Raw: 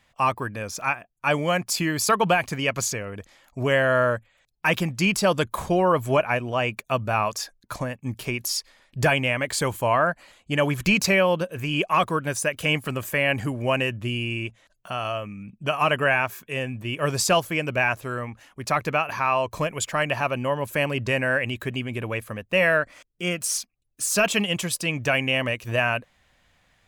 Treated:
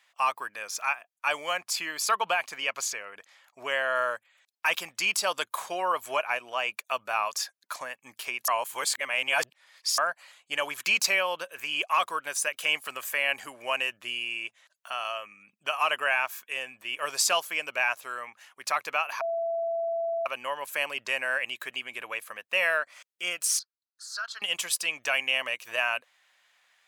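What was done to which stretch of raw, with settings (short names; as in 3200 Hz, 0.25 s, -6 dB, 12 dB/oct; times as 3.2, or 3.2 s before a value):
1.53–3.96 high shelf 5000 Hz -6.5 dB
8.48–9.98 reverse
19.21–20.26 bleep 669 Hz -18.5 dBFS
23.59–24.42 double band-pass 2500 Hz, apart 1.6 oct
whole clip: HPF 1000 Hz 12 dB/oct; dynamic EQ 1800 Hz, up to -4 dB, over -35 dBFS, Q 1.6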